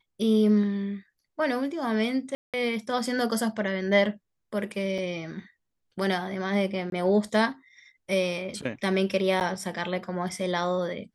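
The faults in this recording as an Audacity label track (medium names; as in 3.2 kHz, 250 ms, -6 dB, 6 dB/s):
2.350000	2.540000	dropout 187 ms
4.980000	4.980000	dropout 3.8 ms
6.900000	6.920000	dropout 22 ms
9.400000	9.410000	dropout 9.1 ms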